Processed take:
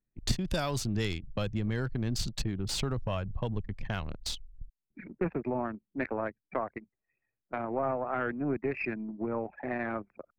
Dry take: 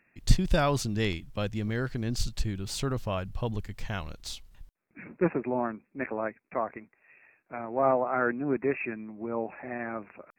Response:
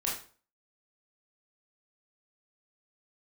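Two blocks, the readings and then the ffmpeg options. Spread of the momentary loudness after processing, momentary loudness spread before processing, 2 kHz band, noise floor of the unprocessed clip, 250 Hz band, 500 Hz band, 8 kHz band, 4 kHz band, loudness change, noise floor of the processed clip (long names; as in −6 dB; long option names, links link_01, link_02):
7 LU, 13 LU, −3.0 dB, −72 dBFS, −2.0 dB, −4.0 dB, −0.5 dB, +0.5 dB, −3.0 dB, below −85 dBFS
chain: -filter_complex "[0:a]anlmdn=0.631,acrossover=split=120|4200[link_01][link_02][link_03];[link_01]acompressor=threshold=-40dB:ratio=4[link_04];[link_02]acompressor=threshold=-36dB:ratio=4[link_05];[link_03]acompressor=threshold=-44dB:ratio=4[link_06];[link_04][link_05][link_06]amix=inputs=3:normalize=0,aeval=exprs='0.0944*(cos(1*acos(clip(val(0)/0.0944,-1,1)))-cos(1*PI/2))+0.0168*(cos(2*acos(clip(val(0)/0.0944,-1,1)))-cos(2*PI/2))':channel_layout=same,volume=5.5dB"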